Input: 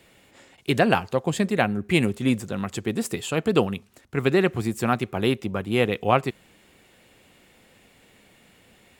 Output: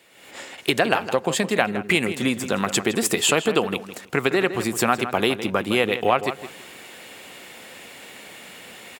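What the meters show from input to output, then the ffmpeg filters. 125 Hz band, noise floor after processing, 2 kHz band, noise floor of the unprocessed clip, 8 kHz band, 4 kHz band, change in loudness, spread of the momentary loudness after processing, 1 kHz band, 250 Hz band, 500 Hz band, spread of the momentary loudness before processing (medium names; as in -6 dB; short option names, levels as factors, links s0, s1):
-5.0 dB, -45 dBFS, +5.0 dB, -57 dBFS, +11.0 dB, +7.0 dB, +2.0 dB, 20 LU, +2.5 dB, -1.0 dB, +1.5 dB, 8 LU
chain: -filter_complex "[0:a]acompressor=threshold=0.0355:ratio=6,highpass=f=530:p=1,asplit=2[s0][s1];[s1]adelay=162,lowpass=f=3200:p=1,volume=0.282,asplit=2[s2][s3];[s3]adelay=162,lowpass=f=3200:p=1,volume=0.24,asplit=2[s4][s5];[s5]adelay=162,lowpass=f=3200:p=1,volume=0.24[s6];[s2][s4][s6]amix=inputs=3:normalize=0[s7];[s0][s7]amix=inputs=2:normalize=0,dynaudnorm=f=100:g=5:m=5.01,volume=1.26"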